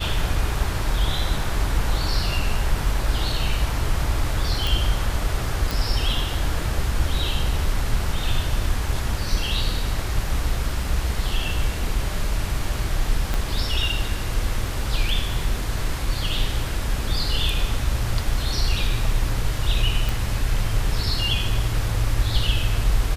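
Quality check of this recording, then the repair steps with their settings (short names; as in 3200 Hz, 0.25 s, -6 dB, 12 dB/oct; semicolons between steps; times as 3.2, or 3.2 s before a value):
4.67 pop
5.71 pop
13.34 pop
20.09 pop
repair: de-click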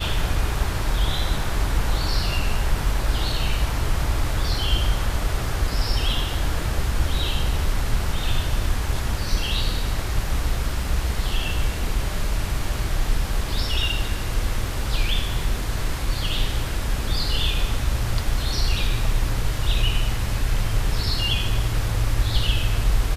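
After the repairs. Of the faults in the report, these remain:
13.34 pop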